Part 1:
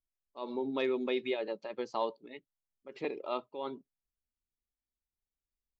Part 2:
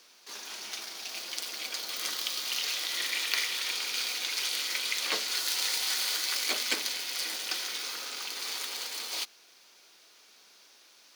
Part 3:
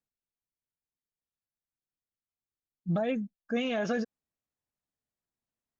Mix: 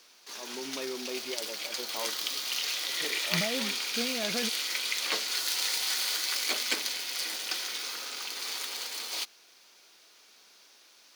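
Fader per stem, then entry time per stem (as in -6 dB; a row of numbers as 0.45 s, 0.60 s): -6.0 dB, 0.0 dB, -5.0 dB; 0.00 s, 0.00 s, 0.45 s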